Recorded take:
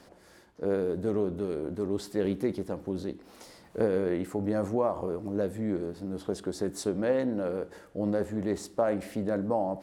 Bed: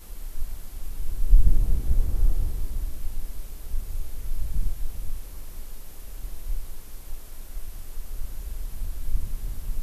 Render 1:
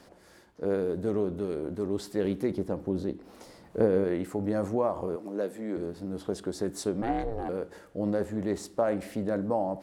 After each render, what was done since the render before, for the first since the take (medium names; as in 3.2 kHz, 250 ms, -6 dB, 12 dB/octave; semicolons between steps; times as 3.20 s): 2.51–4.04 s: tilt shelf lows +3.5 dB, about 1.2 kHz; 5.16–5.77 s: Bessel high-pass 280 Hz, order 4; 7.02–7.49 s: ring modulator 220 Hz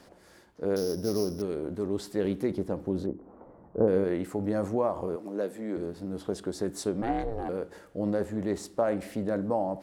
0.76–1.42 s: sorted samples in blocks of 8 samples; 3.06–3.88 s: low-pass 1.2 kHz 24 dB/octave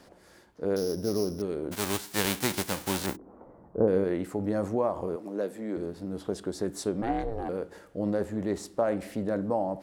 1.71–3.15 s: formants flattened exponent 0.3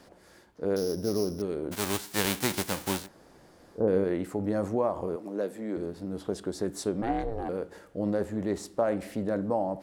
3.01–3.80 s: room tone, crossfade 0.16 s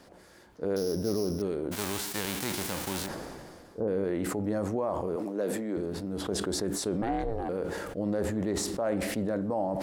peak limiter -20.5 dBFS, peak gain reduction 10.5 dB; decay stretcher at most 28 dB/s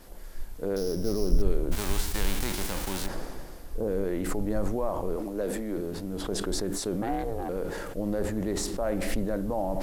add bed -8 dB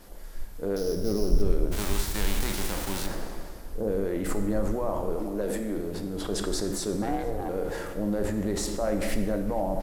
echo from a far wall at 79 m, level -19 dB; plate-style reverb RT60 1.2 s, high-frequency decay 0.8×, DRR 6.5 dB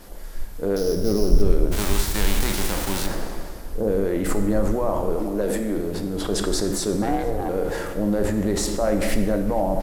trim +6 dB